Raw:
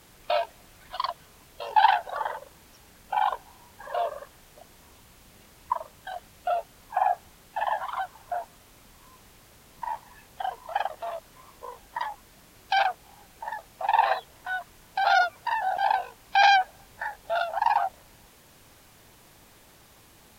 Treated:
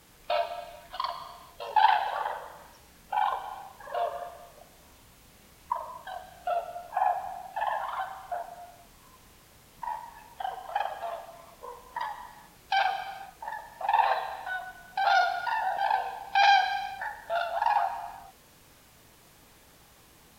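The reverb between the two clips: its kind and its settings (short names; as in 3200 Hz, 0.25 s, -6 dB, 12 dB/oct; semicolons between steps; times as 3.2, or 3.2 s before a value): non-linear reverb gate 0.48 s falling, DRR 5.5 dB; gain -3 dB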